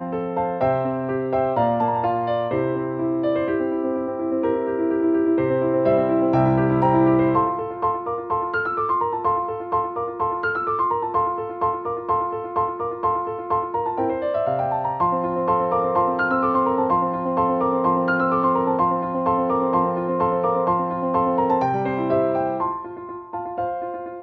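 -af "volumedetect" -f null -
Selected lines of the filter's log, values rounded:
mean_volume: -21.4 dB
max_volume: -7.0 dB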